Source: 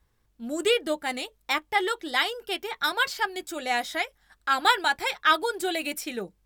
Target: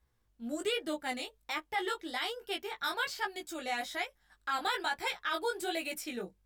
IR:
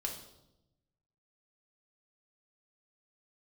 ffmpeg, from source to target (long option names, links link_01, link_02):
-af "alimiter=limit=-16.5dB:level=0:latency=1:release=18,flanger=delay=15:depth=6.5:speed=1.2,volume=-3.5dB"